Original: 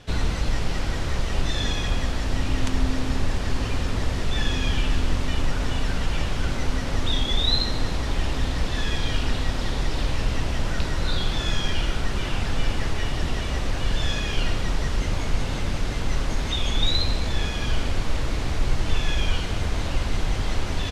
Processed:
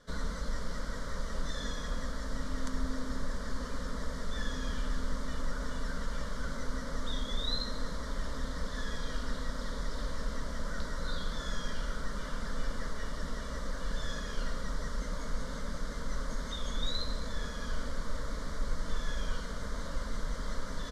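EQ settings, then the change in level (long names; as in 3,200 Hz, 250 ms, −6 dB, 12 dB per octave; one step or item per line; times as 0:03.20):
low-shelf EQ 430 Hz −4 dB
high-shelf EQ 6,600 Hz −5 dB
phaser with its sweep stopped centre 520 Hz, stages 8
−5.5 dB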